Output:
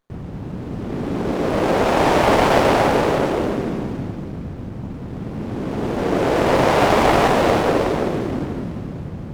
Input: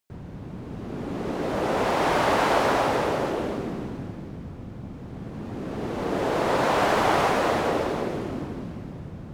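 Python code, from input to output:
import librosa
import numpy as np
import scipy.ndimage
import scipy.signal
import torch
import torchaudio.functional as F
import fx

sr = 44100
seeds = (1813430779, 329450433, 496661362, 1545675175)

y = fx.running_max(x, sr, window=17)
y = y * librosa.db_to_amplitude(8.0)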